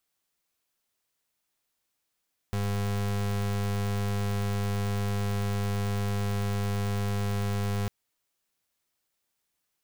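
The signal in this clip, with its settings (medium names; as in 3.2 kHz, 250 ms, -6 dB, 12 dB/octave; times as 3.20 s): pulse 101 Hz, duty 34% -28.5 dBFS 5.35 s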